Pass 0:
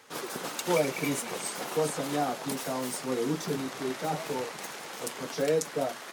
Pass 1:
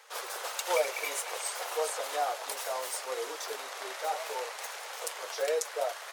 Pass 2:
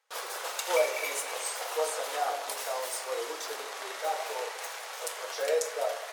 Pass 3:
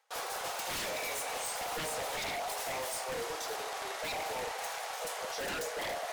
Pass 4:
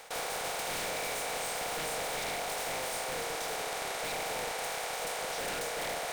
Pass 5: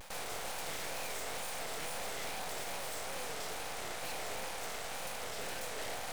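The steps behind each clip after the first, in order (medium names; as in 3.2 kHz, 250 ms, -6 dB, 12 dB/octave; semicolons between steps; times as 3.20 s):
steep high-pass 490 Hz 36 dB/octave
gate with hold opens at -40 dBFS; simulated room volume 270 m³, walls mixed, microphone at 0.65 m
peaking EQ 750 Hz +7.5 dB 0.39 oct; reverse; upward compressor, threshold -33 dBFS; reverse; wavefolder -30 dBFS; trim -1.5 dB
spectral levelling over time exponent 0.4; trim -4.5 dB
wow and flutter 150 cents; half-wave rectifier; peak limiter -32.5 dBFS, peak gain reduction 8.5 dB; trim +3 dB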